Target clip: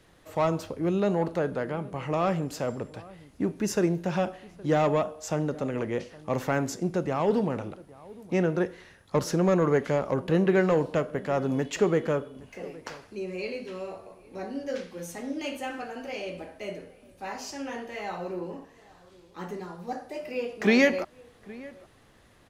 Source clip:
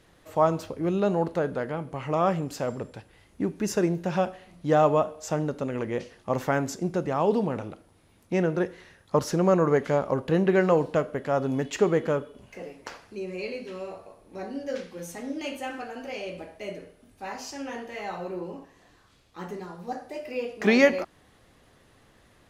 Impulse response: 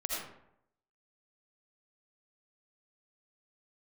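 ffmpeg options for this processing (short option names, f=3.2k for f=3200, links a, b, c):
-filter_complex "[0:a]acrossover=split=430|1400[a][b][c];[b]asoftclip=type=tanh:threshold=-24dB[d];[a][d][c]amix=inputs=3:normalize=0,asplit=2[e][f];[f]adelay=816.3,volume=-21dB,highshelf=f=4k:g=-18.4[g];[e][g]amix=inputs=2:normalize=0"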